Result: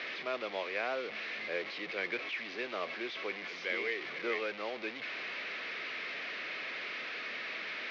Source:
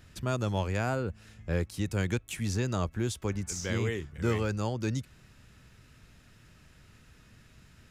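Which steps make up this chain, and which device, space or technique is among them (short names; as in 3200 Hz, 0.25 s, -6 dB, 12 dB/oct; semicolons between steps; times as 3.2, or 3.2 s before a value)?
digital answering machine (BPF 370–3000 Hz; delta modulation 32 kbps, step -35 dBFS; speaker cabinet 400–4300 Hz, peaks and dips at 880 Hz -8 dB, 1400 Hz -4 dB, 2200 Hz +9 dB)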